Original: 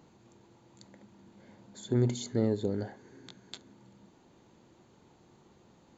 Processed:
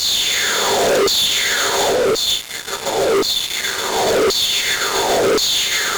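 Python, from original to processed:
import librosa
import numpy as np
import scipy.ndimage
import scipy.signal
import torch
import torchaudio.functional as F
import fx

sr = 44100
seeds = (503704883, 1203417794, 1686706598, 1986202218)

p1 = fx.bin_compress(x, sr, power=0.2)
p2 = fx.echo_heads(p1, sr, ms=142, heads='all three', feedback_pct=73, wet_db=-6.5)
p3 = 10.0 ** (-23.5 / 20.0) * np.tanh(p2 / 10.0 ** (-23.5 / 20.0))
p4 = p2 + (p3 * librosa.db_to_amplitude(-11.5))
p5 = fx.over_compress(p4, sr, threshold_db=-25.0, ratio=-0.5)
p6 = fx.room_shoebox(p5, sr, seeds[0], volume_m3=77.0, walls='mixed', distance_m=1.2)
p7 = fx.filter_lfo_highpass(p6, sr, shape='saw_down', hz=0.93, low_hz=400.0, high_hz=4700.0, q=3.8)
p8 = fx.fuzz(p7, sr, gain_db=30.0, gate_db=-36.0)
y = fx.end_taper(p8, sr, db_per_s=190.0)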